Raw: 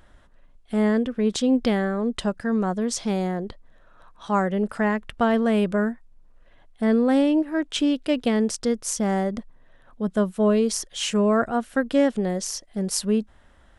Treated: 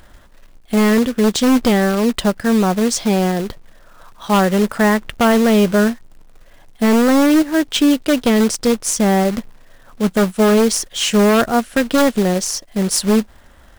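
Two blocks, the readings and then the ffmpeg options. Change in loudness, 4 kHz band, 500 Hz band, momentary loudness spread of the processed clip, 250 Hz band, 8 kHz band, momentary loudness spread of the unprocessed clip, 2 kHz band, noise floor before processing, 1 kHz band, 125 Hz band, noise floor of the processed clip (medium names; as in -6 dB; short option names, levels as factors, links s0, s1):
+8.0 dB, +10.0 dB, +7.5 dB, 7 LU, +7.5 dB, +9.5 dB, 8 LU, +9.5 dB, -54 dBFS, +8.5 dB, +8.5 dB, -45 dBFS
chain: -af "acrusher=bits=3:mode=log:mix=0:aa=0.000001,aeval=exprs='0.178*(abs(mod(val(0)/0.178+3,4)-2)-1)':c=same,volume=2.66"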